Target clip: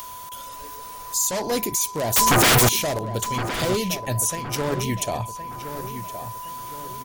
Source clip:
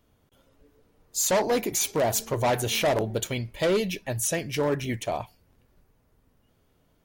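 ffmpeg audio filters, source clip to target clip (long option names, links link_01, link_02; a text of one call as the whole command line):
ffmpeg -i in.wav -filter_complex "[0:a]bass=frequency=250:gain=5,treble=frequency=4000:gain=13,acrossover=split=610[link_01][link_02];[link_02]acompressor=mode=upward:threshold=-32dB:ratio=2.5[link_03];[link_01][link_03]amix=inputs=2:normalize=0,alimiter=limit=-13dB:level=0:latency=1:release=350,asplit=2[link_04][link_05];[link_05]acompressor=threshold=-38dB:ratio=6,volume=3dB[link_06];[link_04][link_06]amix=inputs=2:normalize=0,aeval=exprs='val(0)+0.0178*sin(2*PI*1000*n/s)':channel_layout=same,asettb=1/sr,asplit=3[link_07][link_08][link_09];[link_07]atrim=end=2.164[link_10];[link_08]atrim=start=2.16:end=2.69,asetpts=PTS-STARTPTS,afade=type=in:duration=0.004:curve=qsin,afade=type=out:start_time=0.526:duration=0.004:curve=qsin,aeval=exprs='0.282*sin(PI/2*7.08*val(0)/0.282)':channel_layout=same[link_11];[link_09]atrim=start=2.686[link_12];[link_10][link_11]acrossfade=duration=0.004:curve1=hsin:curve2=qsin[link_13];[link_13][link_12]acrossfade=duration=0.004:curve1=qsin:curve2=hsin,asettb=1/sr,asplit=3[link_14][link_15][link_16];[link_14]atrim=end=4.354[link_17];[link_15]atrim=start=4.35:end=4.77,asetpts=PTS-STARTPTS,afade=type=in:duration=0.004:curve=qsin,afade=type=out:start_time=0.416:duration=0.004:curve=qsin,aeval=exprs='0.316*(cos(1*acos(clip(val(0)/0.316,-1,1)))-cos(1*PI/2))+0.0224*(cos(7*acos(clip(val(0)/0.316,-1,1)))-cos(7*PI/2))':channel_layout=same[link_18];[link_16]atrim=start=4.766[link_19];[link_17][link_18]acrossfade=duration=0.004:curve1=hsin:curve2=qsin[link_20];[link_20][link_19]acrossfade=duration=0.004:curve1=qsin:curve2=hsin,asplit=2[link_21][link_22];[link_22]adelay=1066,lowpass=frequency=2700:poles=1,volume=-10dB,asplit=2[link_23][link_24];[link_24]adelay=1066,lowpass=frequency=2700:poles=1,volume=0.45,asplit=2[link_25][link_26];[link_26]adelay=1066,lowpass=frequency=2700:poles=1,volume=0.45,asplit=2[link_27][link_28];[link_28]adelay=1066,lowpass=frequency=2700:poles=1,volume=0.45,asplit=2[link_29][link_30];[link_30]adelay=1066,lowpass=frequency=2700:poles=1,volume=0.45[link_31];[link_21][link_23][link_25][link_27][link_29][link_31]amix=inputs=6:normalize=0,volume=-1.5dB" out.wav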